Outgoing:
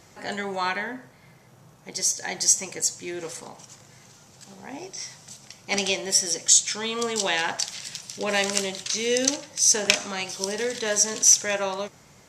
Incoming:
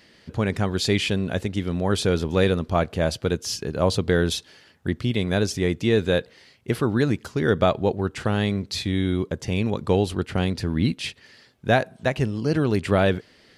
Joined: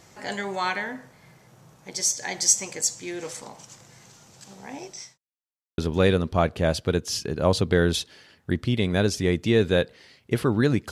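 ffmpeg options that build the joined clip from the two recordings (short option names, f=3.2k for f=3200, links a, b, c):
-filter_complex "[0:a]apad=whole_dur=10.91,atrim=end=10.91,asplit=2[a][b];[a]atrim=end=5.18,asetpts=PTS-STARTPTS,afade=t=out:st=4.73:d=0.45:c=qsin[c];[b]atrim=start=5.18:end=5.78,asetpts=PTS-STARTPTS,volume=0[d];[1:a]atrim=start=2.15:end=7.28,asetpts=PTS-STARTPTS,afade=t=in:d=0.004:c=hsin[e];[c][d][e]concat=n=3:v=0:a=1"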